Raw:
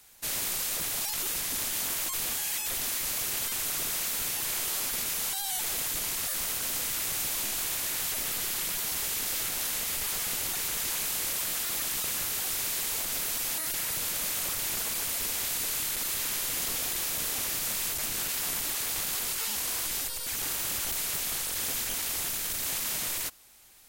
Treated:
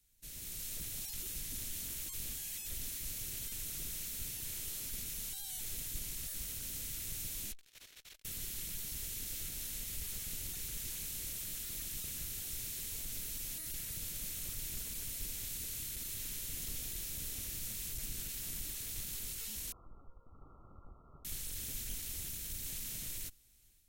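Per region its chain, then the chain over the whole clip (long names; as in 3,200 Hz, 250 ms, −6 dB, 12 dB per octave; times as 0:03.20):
0:07.52–0:08.25: three-way crossover with the lows and the highs turned down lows −16 dB, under 390 Hz, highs −15 dB, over 4,900 Hz + saturating transformer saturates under 3,400 Hz
0:19.72–0:21.25: linear-phase brick-wall low-pass 1,400 Hz + tilt shelving filter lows −9.5 dB, about 690 Hz
whole clip: guitar amp tone stack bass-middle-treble 10-0-1; notch filter 4,800 Hz, Q 20; automatic gain control gain up to 7 dB; level +2.5 dB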